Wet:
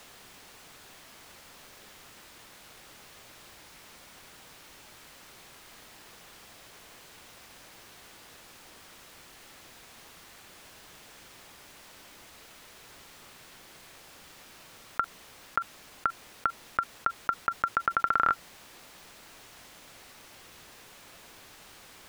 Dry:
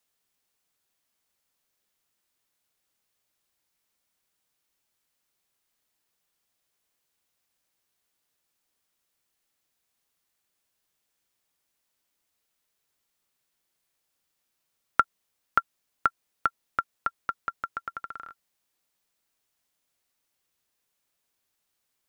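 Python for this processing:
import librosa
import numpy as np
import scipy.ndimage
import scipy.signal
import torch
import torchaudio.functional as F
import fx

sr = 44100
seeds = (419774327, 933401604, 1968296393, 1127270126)

y = fx.lowpass(x, sr, hz=2900.0, slope=6)
y = fx.env_flatten(y, sr, amount_pct=100)
y = y * 10.0 ** (-6.5 / 20.0)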